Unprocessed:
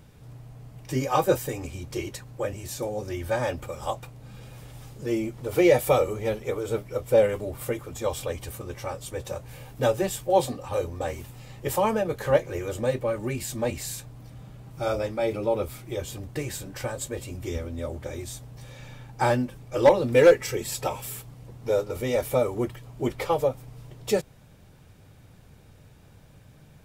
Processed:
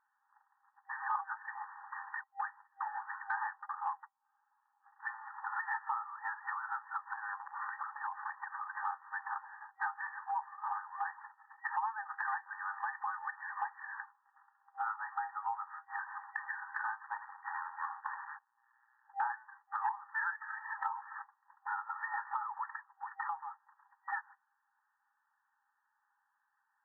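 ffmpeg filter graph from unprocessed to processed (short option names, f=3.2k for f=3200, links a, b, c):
-filter_complex "[0:a]asettb=1/sr,asplit=3[a][b][c];[a]atrim=end=2.204[d];[b]atrim=start=2.2:end=4.84,asetpts=PTS-STARTPTS,afade=t=in:d=0.004:c=qsin,afade=t=out:st=2.636:d=0.004:c=qsin,highpass=210,aeval=exprs='val(0)+0.00282*(sin(2*PI*60*n/s)+sin(2*PI*2*60*n/s)/2+sin(2*PI*3*60*n/s)/3+sin(2*PI*4*60*n/s)/4+sin(2*PI*5*60*n/s)/5)':c=same,adynamicsmooth=sensitivity=5:basefreq=730[e];[c]atrim=start=4.836[f];[d][e]acrossfade=d=0.004:c1=hsin:c2=qsin[g];[g][f]acrossfade=d=0.004:c1=qsin:c2=hsin,asettb=1/sr,asplit=3[h][i][j];[h]atrim=end=7.134[k];[i]atrim=start=7.13:end=8.85,asetpts=PTS-STARTPTS,afade=t=in:d=0.004:c=qsin,afade=t=out:st=1.716:d=0.004:c=qsin,aemphasis=mode=reproduction:type=bsi,acompressor=threshold=-28dB:ratio=16:attack=3.2:release=140:knee=1:detection=peak,aeval=exprs='clip(val(0),-1,0.0422)':c=same[l];[j]atrim=start=8.846[m];[k][l]acrossfade=d=0.004:c1=hsin:c2=qsin[n];[n][m]acrossfade=d=0.004:c1=qsin:c2=hsin,asettb=1/sr,asplit=3[o][p][q];[o]atrim=end=17.044[r];[p]atrim=start=17.04:end=19.05,asetpts=PTS-STARTPTS,afade=t=in:d=0.004:c=qsin,afade=t=out:st=2.006:d=0.004:c=qsin,highpass=f=100:p=1,aeval=exprs='max(val(0),0)':c=same,aecho=1:1:80:0.158,atrim=end_sample=88641[s];[q]atrim=start=19.046[t];[r][s]acrossfade=d=0.004:c1=hsin:c2=qsin[u];[u][t]acrossfade=d=0.004:c1=qsin:c2=hsin,asettb=1/sr,asplit=3[v][w][x];[v]atrim=end=22.964[y];[w]atrim=start=22.96:end=23.6,asetpts=PTS-STARTPTS,afade=t=in:d=0.004:c=qsin,afade=t=out:st=0.636:d=0.004:c=qsin,acompressor=threshold=-35dB:ratio=4:attack=3.2:release=140:knee=1:detection=peak,highpass=110,lowpass=5.2k[z];[x]atrim=start=23.596[aa];[y][z]acrossfade=d=0.004:c1=hsin:c2=qsin[ab];[ab][aa]acrossfade=d=0.004:c1=qsin:c2=hsin,agate=range=-25dB:threshold=-40dB:ratio=16:detection=peak,afftfilt=real='re*between(b*sr/4096,790,1900)':imag='im*between(b*sr/4096,790,1900)':win_size=4096:overlap=0.75,acompressor=threshold=-49dB:ratio=5,volume=13dB"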